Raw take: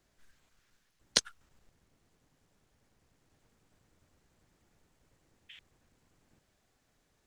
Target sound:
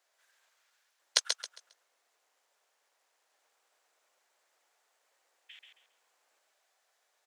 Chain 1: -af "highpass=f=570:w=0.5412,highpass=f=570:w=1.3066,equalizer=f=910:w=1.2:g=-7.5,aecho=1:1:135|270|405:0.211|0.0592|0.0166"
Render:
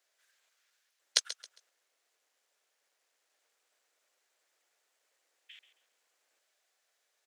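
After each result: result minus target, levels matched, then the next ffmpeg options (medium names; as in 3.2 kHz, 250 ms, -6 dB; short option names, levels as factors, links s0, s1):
echo-to-direct -8.5 dB; 1 kHz band -5.0 dB
-af "highpass=f=570:w=0.5412,highpass=f=570:w=1.3066,equalizer=f=910:w=1.2:g=-7.5,aecho=1:1:135|270|405|540:0.562|0.157|0.0441|0.0123"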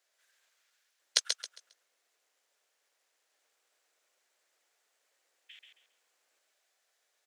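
1 kHz band -5.0 dB
-af "highpass=f=570:w=0.5412,highpass=f=570:w=1.3066,aecho=1:1:135|270|405|540:0.562|0.157|0.0441|0.0123"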